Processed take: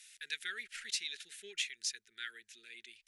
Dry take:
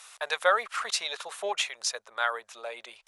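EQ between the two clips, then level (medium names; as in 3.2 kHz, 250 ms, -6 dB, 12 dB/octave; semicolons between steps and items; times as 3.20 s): inverse Chebyshev band-stop 520–1200 Hz, stop band 40 dB; -7.0 dB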